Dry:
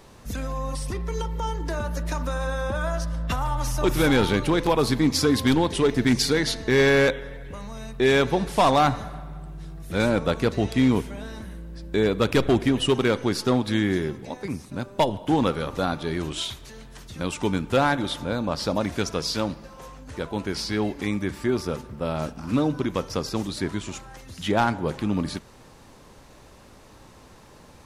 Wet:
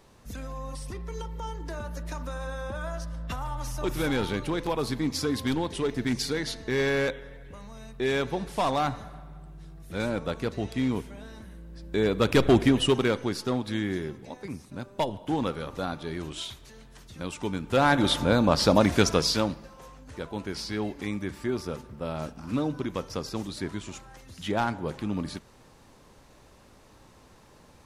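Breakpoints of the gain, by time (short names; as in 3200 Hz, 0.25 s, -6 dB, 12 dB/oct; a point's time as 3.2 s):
11.5 s -7.5 dB
12.6 s +1.5 dB
13.42 s -6.5 dB
17.6 s -6.5 dB
18.07 s +5 dB
19.11 s +5 dB
19.78 s -5.5 dB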